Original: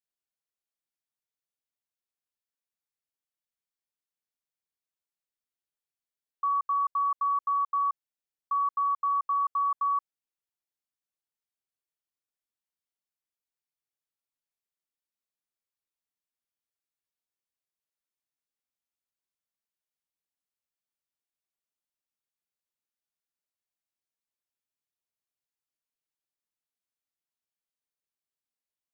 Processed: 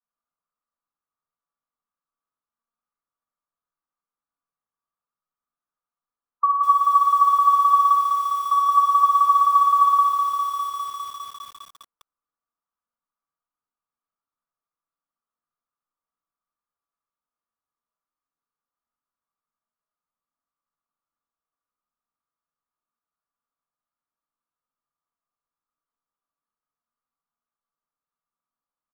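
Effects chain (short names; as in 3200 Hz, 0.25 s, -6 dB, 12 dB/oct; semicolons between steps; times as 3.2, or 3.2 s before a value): spectral gate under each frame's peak -25 dB strong; synth low-pass 1200 Hz, resonance Q 6.4; early reflections 54 ms -14 dB, 73 ms -5 dB; reverb RT60 0.40 s, pre-delay 4 ms, DRR 0.5 dB; lo-fi delay 0.202 s, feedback 80%, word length 6-bit, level -7 dB; gain -3.5 dB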